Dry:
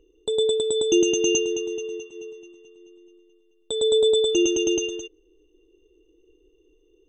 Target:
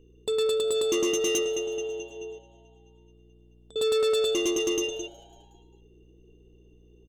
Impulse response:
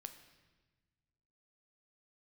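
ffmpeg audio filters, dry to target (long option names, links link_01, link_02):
-filter_complex "[0:a]bandreject=frequency=50:width_type=h:width=6,bandreject=frequency=100:width_type=h:width=6,bandreject=frequency=150:width_type=h:width=6,bandreject=frequency=200:width_type=h:width=6,bandreject=frequency=250:width_type=h:width=6,bandreject=frequency=300:width_type=h:width=6,bandreject=frequency=350:width_type=h:width=6,asettb=1/sr,asplit=3[link_01][link_02][link_03];[link_01]atrim=end=2.384[link_04];[link_02]atrim=start=2.38:end=3.76,asetpts=PTS-STARTPTS,afade=type=in:duration=0.004:curve=qsin,afade=type=out:start_time=1.376:duration=0.004:curve=qsin,acompressor=threshold=-57dB:ratio=6[link_05];[link_03]atrim=start=3.756[link_06];[link_04][link_05]acrossfade=duration=0.004:curve1=hsin:curve2=qsin[link_07];[link_07][link_06]acrossfade=duration=0.004:curve1=qsin:curve2=hsin,aeval=exprs='val(0)+0.00158*(sin(2*PI*60*n/s)+sin(2*PI*2*60*n/s)/2+sin(2*PI*3*60*n/s)/3+sin(2*PI*4*60*n/s)/4+sin(2*PI*5*60*n/s)/5)':channel_layout=same,asoftclip=type=tanh:threshold=-21dB,asplit=2[link_08][link_09];[link_09]asplit=4[link_10][link_11][link_12][link_13];[link_10]adelay=183,afreqshift=120,volume=-23dB[link_14];[link_11]adelay=366,afreqshift=240,volume=-27.9dB[link_15];[link_12]adelay=549,afreqshift=360,volume=-32.8dB[link_16];[link_13]adelay=732,afreqshift=480,volume=-37.6dB[link_17];[link_14][link_15][link_16][link_17]amix=inputs=4:normalize=0[link_18];[link_08][link_18]amix=inputs=2:normalize=0"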